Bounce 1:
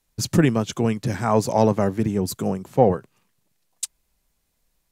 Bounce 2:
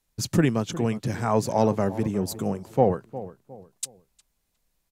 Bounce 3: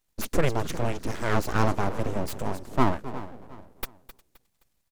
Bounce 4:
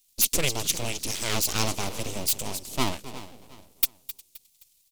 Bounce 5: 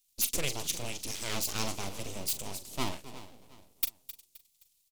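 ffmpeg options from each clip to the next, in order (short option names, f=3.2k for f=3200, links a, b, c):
-filter_complex "[0:a]asplit=2[a][b];[b]adelay=358,lowpass=f=1.4k:p=1,volume=-14.5dB,asplit=2[c][d];[d]adelay=358,lowpass=f=1.4k:p=1,volume=0.36,asplit=2[e][f];[f]adelay=358,lowpass=f=1.4k:p=1,volume=0.36[g];[a][c][e][g]amix=inputs=4:normalize=0,volume=-3.5dB"
-filter_complex "[0:a]asplit=4[a][b][c][d];[b]adelay=261,afreqshift=-130,volume=-14.5dB[e];[c]adelay=522,afreqshift=-260,volume=-23.9dB[f];[d]adelay=783,afreqshift=-390,volume=-33.2dB[g];[a][e][f][g]amix=inputs=4:normalize=0,aeval=exprs='abs(val(0))':c=same"
-af "aexciter=amount=7.7:drive=5.3:freq=2.4k,volume=-5.5dB"
-filter_complex "[0:a]asplit=2[a][b];[b]adelay=41,volume=-11.5dB[c];[a][c]amix=inputs=2:normalize=0,volume=-7.5dB"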